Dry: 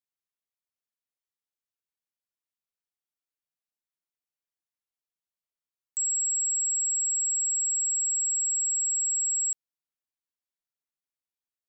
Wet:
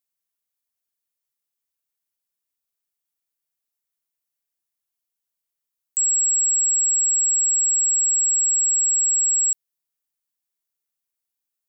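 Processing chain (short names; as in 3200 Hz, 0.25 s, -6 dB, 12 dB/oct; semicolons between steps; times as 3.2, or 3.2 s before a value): high shelf 7000 Hz +11.5 dB; gain +1.5 dB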